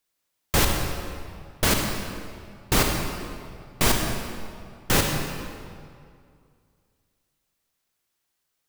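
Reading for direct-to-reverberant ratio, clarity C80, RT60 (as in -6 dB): 2.0 dB, 4.0 dB, 2.3 s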